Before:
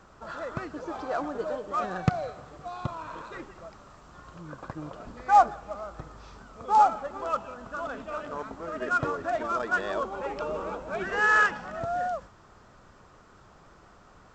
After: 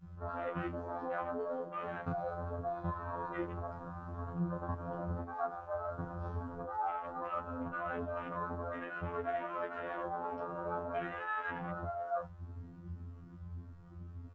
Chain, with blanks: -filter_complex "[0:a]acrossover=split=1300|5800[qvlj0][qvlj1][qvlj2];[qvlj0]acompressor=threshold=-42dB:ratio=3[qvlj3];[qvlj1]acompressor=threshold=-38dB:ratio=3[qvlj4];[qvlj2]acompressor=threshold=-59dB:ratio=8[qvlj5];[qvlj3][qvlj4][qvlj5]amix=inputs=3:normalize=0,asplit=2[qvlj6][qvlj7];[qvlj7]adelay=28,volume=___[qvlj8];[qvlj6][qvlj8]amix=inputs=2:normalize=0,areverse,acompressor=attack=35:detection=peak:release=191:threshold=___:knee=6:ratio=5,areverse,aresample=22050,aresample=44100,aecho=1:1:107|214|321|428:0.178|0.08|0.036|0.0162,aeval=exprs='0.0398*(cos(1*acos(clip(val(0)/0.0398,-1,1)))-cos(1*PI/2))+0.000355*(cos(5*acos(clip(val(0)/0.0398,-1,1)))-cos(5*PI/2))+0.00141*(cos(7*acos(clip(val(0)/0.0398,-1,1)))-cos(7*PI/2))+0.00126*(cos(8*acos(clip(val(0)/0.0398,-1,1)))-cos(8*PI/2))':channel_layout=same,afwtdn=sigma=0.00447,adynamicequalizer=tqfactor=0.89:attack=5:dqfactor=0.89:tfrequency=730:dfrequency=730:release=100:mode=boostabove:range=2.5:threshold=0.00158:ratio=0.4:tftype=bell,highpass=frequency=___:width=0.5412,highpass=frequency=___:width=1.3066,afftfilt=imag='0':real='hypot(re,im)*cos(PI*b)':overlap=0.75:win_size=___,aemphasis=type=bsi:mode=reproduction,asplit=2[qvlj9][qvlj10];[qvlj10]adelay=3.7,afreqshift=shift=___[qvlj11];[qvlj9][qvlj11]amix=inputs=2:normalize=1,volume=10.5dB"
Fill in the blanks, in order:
-4dB, -45dB, 57, 57, 2048, 1.8